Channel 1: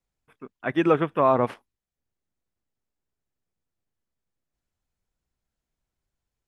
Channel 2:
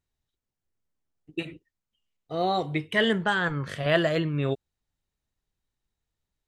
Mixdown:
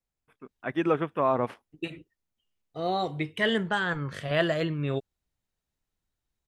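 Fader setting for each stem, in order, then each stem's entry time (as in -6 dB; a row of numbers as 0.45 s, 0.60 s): -5.0 dB, -2.5 dB; 0.00 s, 0.45 s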